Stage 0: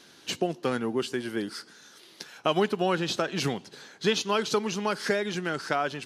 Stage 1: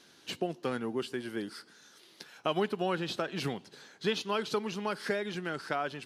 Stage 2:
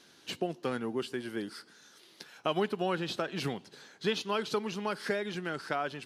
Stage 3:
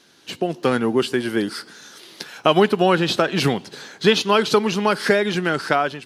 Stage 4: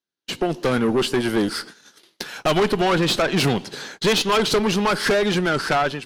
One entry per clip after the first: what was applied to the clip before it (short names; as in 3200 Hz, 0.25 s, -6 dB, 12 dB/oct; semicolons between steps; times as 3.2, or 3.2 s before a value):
dynamic EQ 6400 Hz, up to -7 dB, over -52 dBFS, Q 2.1; gain -5.5 dB
nothing audible
AGC gain up to 10.5 dB; gain +4.5 dB
gate -40 dBFS, range -40 dB; tube stage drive 20 dB, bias 0.45; gain +5.5 dB